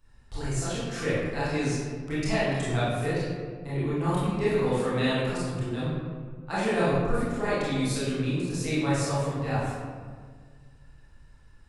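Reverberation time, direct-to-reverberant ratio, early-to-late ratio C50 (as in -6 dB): 1.7 s, -11.0 dB, -3.0 dB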